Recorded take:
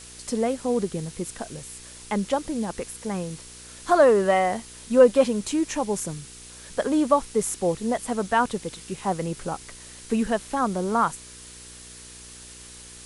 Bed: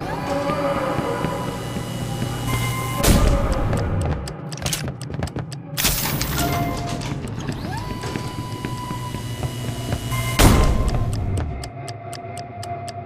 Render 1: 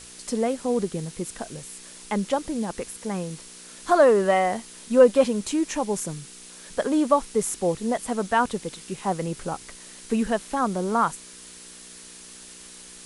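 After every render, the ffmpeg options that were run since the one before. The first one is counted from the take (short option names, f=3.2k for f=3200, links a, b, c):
-af "bandreject=f=60:t=h:w=4,bandreject=f=120:t=h:w=4"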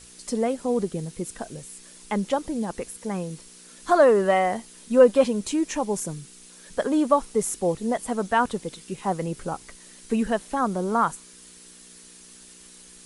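-af "afftdn=nr=6:nf=-45"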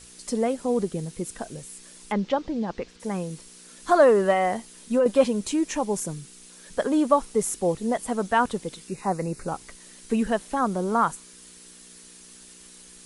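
-filter_complex "[0:a]asettb=1/sr,asplit=3[a][b][c];[a]atrim=end=2.124[d];[b]atrim=start=2.12:end=3,asetpts=PTS-STARTPTS,afade=t=in:d=0.004:c=qsin,afade=t=out:st=0.876:d=0.004:c=qsin,lowpass=f=5.1k:w=0.5412,lowpass=f=5.1k:w=1.3066[e];[c]atrim=start=2.996[f];[d][e]acrossfade=d=0.004:c1=hsin:c2=qsin[g];[g][f]acrossfade=d=0.004:c1=qsin:c2=hsin,asettb=1/sr,asplit=3[h][i][j];[h]atrim=end=4.314[k];[i]atrim=start=4.31:end=5.06,asetpts=PTS-STARTPTS,afade=t=in:d=0.004:c=qsin,afade=t=out:st=0.746:d=0.004:c=qsin,acompressor=threshold=-17dB:ratio=6:attack=3.2:release=140:knee=1:detection=peak[l];[j]atrim=start=5.056[m];[k][l]acrossfade=d=0.004:c1=hsin:c2=qsin[n];[n][m]acrossfade=d=0.004:c1=qsin:c2=hsin,asettb=1/sr,asplit=3[o][p][q];[o]atrim=end=8.884[r];[p]atrim=start=8.88:end=9.48,asetpts=PTS-STARTPTS,afade=t=in:d=0.004:c=qsin,afade=t=out:st=0.596:d=0.004:c=qsin,asuperstop=centerf=3200:order=4:qfactor=2.8[s];[q]atrim=start=9.476[t];[r][s]acrossfade=d=0.004:c1=hsin:c2=qsin[u];[u][t]acrossfade=d=0.004:c1=qsin:c2=hsin"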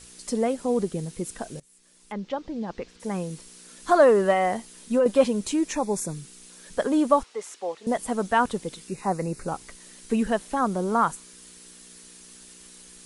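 -filter_complex "[0:a]asettb=1/sr,asplit=3[a][b][c];[a]atrim=end=5.734[d];[b]atrim=start=5.73:end=6.15,asetpts=PTS-STARTPTS,afade=t=in:d=0.004:c=qsin,afade=t=out:st=0.416:d=0.004:c=qsin,asuperstop=centerf=3000:order=20:qfactor=4.6[e];[c]atrim=start=6.146[f];[d][e]acrossfade=d=0.004:c1=hsin:c2=qsin[g];[g][f]acrossfade=d=0.004:c1=qsin:c2=hsin,asettb=1/sr,asplit=3[h][i][j];[h]atrim=end=7.234[k];[i]atrim=start=7.23:end=7.87,asetpts=PTS-STARTPTS,afade=t=in:d=0.004:c=qsin,afade=t=out:st=0.636:d=0.004:c=qsin,highpass=700,lowpass=4.4k[l];[j]atrim=start=7.866[m];[k][l]acrossfade=d=0.004:c1=hsin:c2=qsin[n];[n][m]acrossfade=d=0.004:c1=qsin:c2=hsin,asplit=2[o][p];[o]atrim=end=1.6,asetpts=PTS-STARTPTS,afade=t=out:st=1.596:d=0.004:c=hsin:silence=0.0891251[q];[p]atrim=start=1.6,asetpts=PTS-STARTPTS,afade=t=in:d=1.59:silence=0.0891251[r];[q][r]concat=n=2:v=0:a=1"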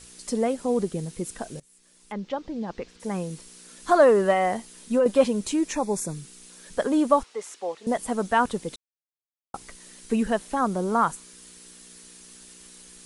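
-filter_complex "[0:a]asplit=3[a][b][c];[a]atrim=end=8.76,asetpts=PTS-STARTPTS,afade=t=out:st=8.756:d=0.004:c=hsin[d];[b]atrim=start=8.76:end=9.54,asetpts=PTS-STARTPTS,volume=0[e];[c]atrim=start=9.54,asetpts=PTS-STARTPTS,afade=t=in:d=0.004:c=hsin[f];[d][e][f]concat=n=3:v=0:a=1"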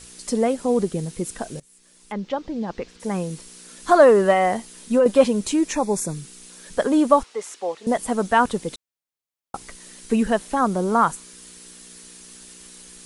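-af "volume=4dB"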